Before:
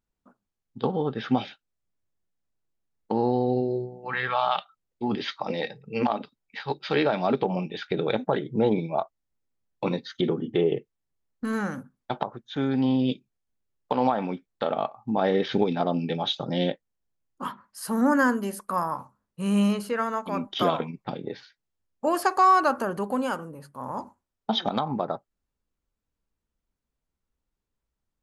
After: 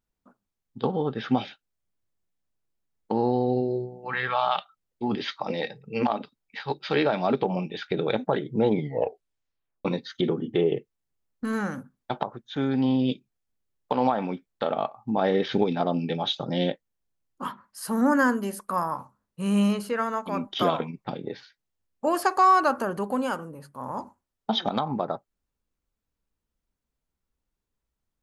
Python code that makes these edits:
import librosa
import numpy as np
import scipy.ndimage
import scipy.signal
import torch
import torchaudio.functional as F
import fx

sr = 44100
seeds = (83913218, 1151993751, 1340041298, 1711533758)

y = fx.edit(x, sr, fx.tape_stop(start_s=8.73, length_s=1.12), tone=tone)